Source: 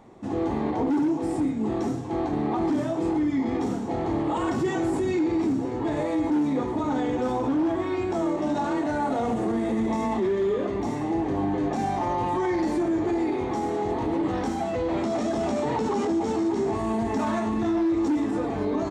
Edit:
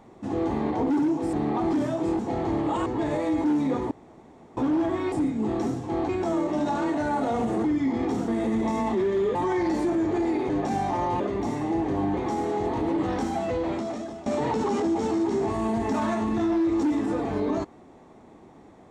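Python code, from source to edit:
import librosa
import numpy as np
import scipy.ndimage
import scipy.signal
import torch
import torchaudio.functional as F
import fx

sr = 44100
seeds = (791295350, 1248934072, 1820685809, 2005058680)

y = fx.edit(x, sr, fx.move(start_s=1.33, length_s=0.97, to_s=7.98),
    fx.move(start_s=3.16, length_s=0.64, to_s=9.53),
    fx.cut(start_s=4.47, length_s=1.25),
    fx.room_tone_fill(start_s=6.77, length_s=0.66),
    fx.swap(start_s=10.6, length_s=0.97, other_s=12.28, other_length_s=1.14),
    fx.fade_out_to(start_s=14.78, length_s=0.73, floor_db=-18.0), tone=tone)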